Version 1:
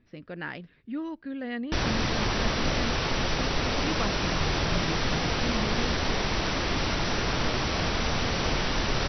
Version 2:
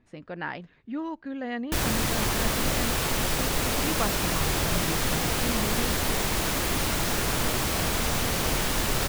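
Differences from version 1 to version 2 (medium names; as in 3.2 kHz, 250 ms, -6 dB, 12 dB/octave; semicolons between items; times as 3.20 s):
speech: add peaking EQ 860 Hz +8 dB 0.93 oct; master: remove brick-wall FIR low-pass 6 kHz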